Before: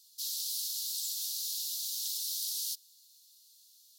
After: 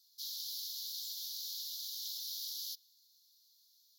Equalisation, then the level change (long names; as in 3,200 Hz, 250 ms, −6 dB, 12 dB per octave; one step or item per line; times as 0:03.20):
dynamic equaliser 3,000 Hz, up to +6 dB, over −58 dBFS, Q 2.2
phaser with its sweep stopped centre 2,600 Hz, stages 6
−4.5 dB